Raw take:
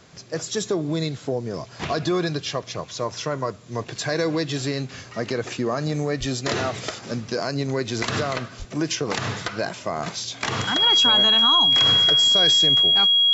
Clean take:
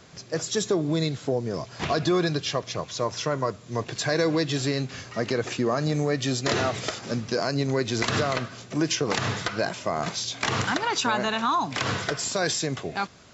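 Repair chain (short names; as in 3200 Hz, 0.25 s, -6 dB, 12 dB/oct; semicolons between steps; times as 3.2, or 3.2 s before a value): notch 3300 Hz, Q 30; de-plosive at 6.19/8.58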